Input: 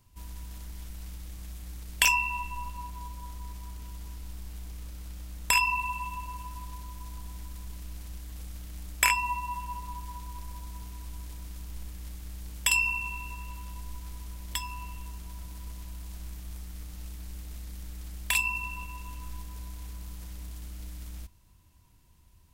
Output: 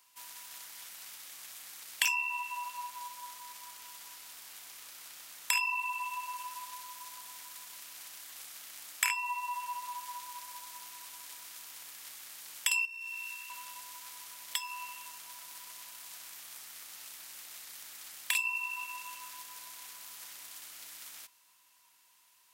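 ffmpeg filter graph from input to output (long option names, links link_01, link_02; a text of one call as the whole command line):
ffmpeg -i in.wav -filter_complex "[0:a]asettb=1/sr,asplit=3[link_01][link_02][link_03];[link_01]atrim=end=12.854[link_04];[link_02]atrim=start=12.85:end=13.5,asetpts=PTS-STARTPTS,afade=type=in:duration=0.004:curve=qsin,afade=type=out:start_time=0.646:duration=0.004:curve=qsin,highpass=frequency=1300:width=0.5412,highpass=frequency=1300:width=1.3066,acompressor=threshold=-40dB:ratio=6:attack=3.2:release=140:knee=1:detection=peak,aeval=exprs='(tanh(56.2*val(0)+0.35)-tanh(0.35))/56.2':channel_layout=same[link_05];[link_03]atrim=start=13.496[link_06];[link_04][link_05]acrossfade=duration=0.004:curve1=hsin:curve2=qsin[link_07];[link_07][link_06]acrossfade=duration=0.004:curve1=qsin:curve2=hsin,highpass=1100,acompressor=threshold=-41dB:ratio=2,volume=5.5dB" out.wav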